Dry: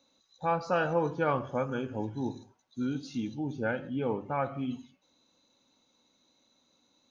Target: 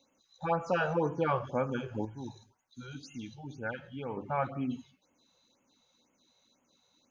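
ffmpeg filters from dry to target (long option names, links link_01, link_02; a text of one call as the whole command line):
ffmpeg -i in.wav -filter_complex "[0:a]asettb=1/sr,asplit=3[link_01][link_02][link_03];[link_01]atrim=end=2.054[link_04];[link_02]atrim=start=2.05:end=4.17,asetpts=PTS-STARTPTS,afade=type=in:duration=0.004:curve=qsin,afade=type=out:start_time=2.116:duration=0.004:curve=qsin,equalizer=frequency=300:width_type=o:width=3:gain=-9.5[link_05];[link_03]atrim=start=4.166[link_06];[link_04][link_05]acrossfade=duration=0.004:curve1=hsin:curve2=qsin[link_07];[link_07][link_06]acrossfade=duration=0.004:curve1=qsin:curve2=hsin,afftfilt=real='re*(1-between(b*sr/1024,240*pow(4700/240,0.5+0.5*sin(2*PI*2*pts/sr))/1.41,240*pow(4700/240,0.5+0.5*sin(2*PI*2*pts/sr))*1.41))':imag='im*(1-between(b*sr/1024,240*pow(4700/240,0.5+0.5*sin(2*PI*2*pts/sr))/1.41,240*pow(4700/240,0.5+0.5*sin(2*PI*2*pts/sr))*1.41))':win_size=1024:overlap=0.75" out.wav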